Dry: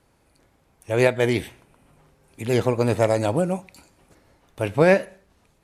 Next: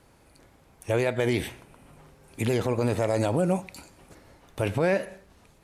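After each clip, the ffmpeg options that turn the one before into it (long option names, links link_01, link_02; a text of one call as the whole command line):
ffmpeg -i in.wav -af "acompressor=threshold=-21dB:ratio=6,alimiter=limit=-19dB:level=0:latency=1:release=30,volume=4.5dB" out.wav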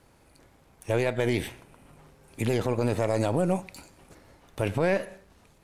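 ffmpeg -i in.wav -af "aeval=exprs='if(lt(val(0),0),0.708*val(0),val(0))':channel_layout=same" out.wav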